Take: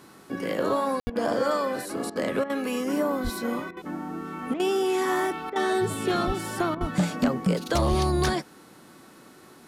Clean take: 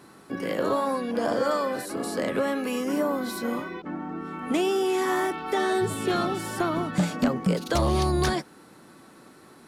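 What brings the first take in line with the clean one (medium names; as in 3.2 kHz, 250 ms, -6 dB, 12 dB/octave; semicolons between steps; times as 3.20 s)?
de-hum 366.4 Hz, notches 40; de-plosive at 1.03/3.23/6.26/6.80/7.89 s; room tone fill 1.00–1.07 s; interpolate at 1.10/2.10/2.44/3.71/4.54/5.50/6.75 s, 56 ms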